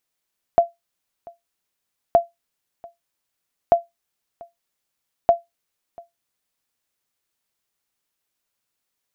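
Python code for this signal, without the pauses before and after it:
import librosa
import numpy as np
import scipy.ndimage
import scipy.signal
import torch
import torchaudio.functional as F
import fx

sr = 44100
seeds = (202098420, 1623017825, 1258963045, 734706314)

y = fx.sonar_ping(sr, hz=684.0, decay_s=0.17, every_s=1.57, pings=4, echo_s=0.69, echo_db=-25.5, level_db=-5.0)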